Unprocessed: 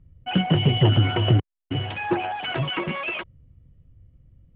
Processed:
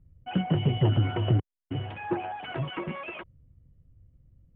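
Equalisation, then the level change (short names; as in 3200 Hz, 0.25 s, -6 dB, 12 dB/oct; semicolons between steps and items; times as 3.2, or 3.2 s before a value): air absorption 150 m; high shelf 2600 Hz -9 dB; -5.0 dB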